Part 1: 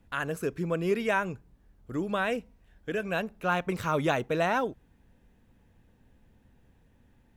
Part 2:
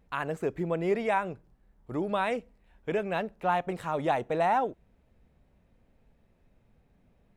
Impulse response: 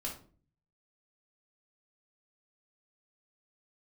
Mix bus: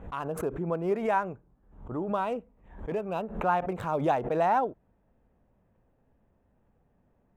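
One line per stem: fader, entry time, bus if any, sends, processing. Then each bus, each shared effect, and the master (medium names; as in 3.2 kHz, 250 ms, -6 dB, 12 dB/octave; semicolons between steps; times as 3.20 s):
-9.5 dB, 0.00 s, no send, local Wiener filter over 9 samples
+0.5 dB, 0.00 s, no send, low-pass 1.2 kHz 24 dB/octave; tilt EQ +2.5 dB/octave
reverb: none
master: swell ahead of each attack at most 98 dB/s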